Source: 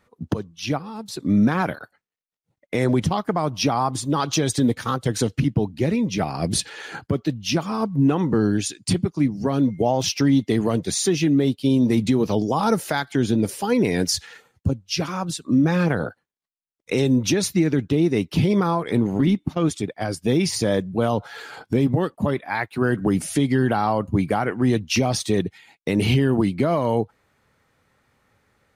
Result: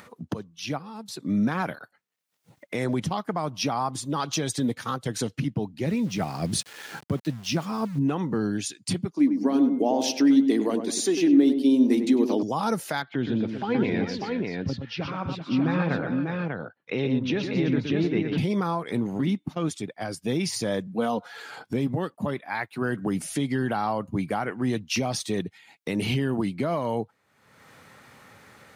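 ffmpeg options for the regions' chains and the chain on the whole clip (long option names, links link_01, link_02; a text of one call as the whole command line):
ffmpeg -i in.wav -filter_complex "[0:a]asettb=1/sr,asplit=3[link_01][link_02][link_03];[link_01]atrim=end=5.864[link_04];[link_02]atrim=start=5.86:end=7.99,asetpts=PTS-STARTPTS,afade=type=in:duration=0.004:curve=qsin,afade=type=out:start_time=2.126:duration=0.004:curve=qsin,lowshelf=frequency=150:gain=7.5,aeval=exprs='val(0)*gte(abs(val(0)),0.015)':channel_layout=same[link_05];[link_03]atrim=start=7.986[link_06];[link_04][link_05]acrossfade=duration=0.004:curve1=hsin:curve2=qsin[link_07];[link_07][link_06]acrossfade=duration=0.004:curve1=qsin:curve2=hsin,asettb=1/sr,asplit=3[link_08][link_09][link_10];[link_08]atrim=end=9.124[link_11];[link_09]atrim=start=9.12:end=12.43,asetpts=PTS-STARTPTS,afade=type=in:duration=0.004:curve=qsin,afade=type=out:start_time=3.306:duration=0.004:curve=qsin,lowshelf=frequency=190:width_type=q:width=3:gain=-13,bandreject=frequency=1300:width=19,asplit=2[link_12][link_13];[link_13]adelay=99,lowpass=frequency=1100:poles=1,volume=-6dB,asplit=2[link_14][link_15];[link_15]adelay=99,lowpass=frequency=1100:poles=1,volume=0.45,asplit=2[link_16][link_17];[link_17]adelay=99,lowpass=frequency=1100:poles=1,volume=0.45,asplit=2[link_18][link_19];[link_19]adelay=99,lowpass=frequency=1100:poles=1,volume=0.45,asplit=2[link_20][link_21];[link_21]adelay=99,lowpass=frequency=1100:poles=1,volume=0.45[link_22];[link_12][link_14][link_16][link_18][link_20][link_22]amix=inputs=6:normalize=0,atrim=end_sample=145971[link_23];[link_10]atrim=start=12.426[link_24];[link_11][link_23]acrossfade=duration=0.004:curve1=hsin:curve2=qsin[link_25];[link_25][link_24]acrossfade=duration=0.004:curve1=qsin:curve2=hsin,asettb=1/sr,asplit=3[link_26][link_27][link_28];[link_26]atrim=end=13.024[link_29];[link_27]atrim=start=13.02:end=18.38,asetpts=PTS-STARTPTS,afade=type=in:duration=0.004:curve=qsin,afade=type=out:start_time=5.356:duration=0.004:curve=qsin,lowpass=frequency=3600:width=0.5412,lowpass=frequency=3600:width=1.3066,aecho=1:1:120|384|595:0.473|0.282|0.668,atrim=end_sample=236376[link_30];[link_28]atrim=start=18.376[link_31];[link_29][link_30]acrossfade=duration=0.004:curve1=hsin:curve2=qsin[link_32];[link_32][link_31]acrossfade=duration=0.004:curve1=qsin:curve2=hsin,asettb=1/sr,asplit=3[link_33][link_34][link_35];[link_33]atrim=end=20.874[link_36];[link_34]atrim=start=20.87:end=21.32,asetpts=PTS-STARTPTS,afade=type=in:duration=0.004:curve=qsin,afade=type=out:start_time=0.446:duration=0.004:curve=qsin,highpass=130,aecho=1:1:4.1:0.55,atrim=end_sample=19845[link_37];[link_35]atrim=start=21.316[link_38];[link_36][link_37]acrossfade=duration=0.004:curve1=hsin:curve2=qsin[link_39];[link_39][link_38]acrossfade=duration=0.004:curve1=qsin:curve2=hsin,highpass=130,equalizer=frequency=380:width=1.2:gain=-3,acompressor=mode=upward:threshold=-30dB:ratio=2.5,volume=-4.5dB" out.wav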